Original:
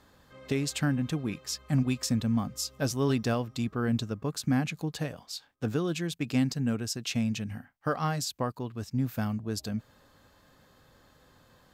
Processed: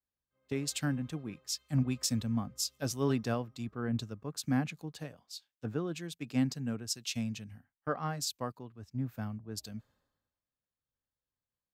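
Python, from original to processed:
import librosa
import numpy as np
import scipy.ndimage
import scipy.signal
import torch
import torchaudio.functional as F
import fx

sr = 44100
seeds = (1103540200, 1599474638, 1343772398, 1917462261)

y = fx.band_widen(x, sr, depth_pct=100)
y = y * librosa.db_to_amplitude(-6.5)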